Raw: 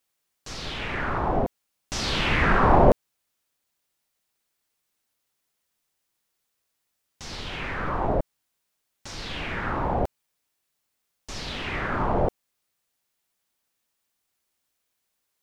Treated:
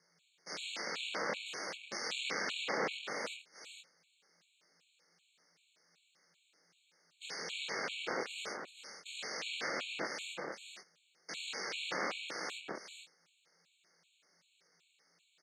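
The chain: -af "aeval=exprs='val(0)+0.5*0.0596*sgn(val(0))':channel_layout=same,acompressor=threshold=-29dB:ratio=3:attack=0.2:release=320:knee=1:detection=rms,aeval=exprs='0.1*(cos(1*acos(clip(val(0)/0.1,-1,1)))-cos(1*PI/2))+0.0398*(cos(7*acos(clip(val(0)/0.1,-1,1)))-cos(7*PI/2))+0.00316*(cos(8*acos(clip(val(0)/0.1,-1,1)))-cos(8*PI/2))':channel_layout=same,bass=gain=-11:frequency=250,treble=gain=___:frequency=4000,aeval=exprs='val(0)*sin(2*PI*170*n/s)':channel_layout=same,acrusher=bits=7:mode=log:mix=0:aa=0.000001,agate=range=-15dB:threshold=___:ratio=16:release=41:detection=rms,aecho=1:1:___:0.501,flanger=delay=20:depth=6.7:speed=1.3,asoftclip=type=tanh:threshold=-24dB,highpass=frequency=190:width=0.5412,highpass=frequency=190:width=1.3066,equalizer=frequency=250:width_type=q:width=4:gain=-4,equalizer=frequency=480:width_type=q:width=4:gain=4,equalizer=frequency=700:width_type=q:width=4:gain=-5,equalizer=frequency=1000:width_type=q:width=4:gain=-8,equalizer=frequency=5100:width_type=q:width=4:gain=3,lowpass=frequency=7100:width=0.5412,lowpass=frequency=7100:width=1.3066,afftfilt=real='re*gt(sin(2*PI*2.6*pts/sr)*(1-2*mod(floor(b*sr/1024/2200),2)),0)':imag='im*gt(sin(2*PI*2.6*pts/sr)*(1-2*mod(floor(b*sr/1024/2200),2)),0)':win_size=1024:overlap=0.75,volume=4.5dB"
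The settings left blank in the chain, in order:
-4, -43dB, 468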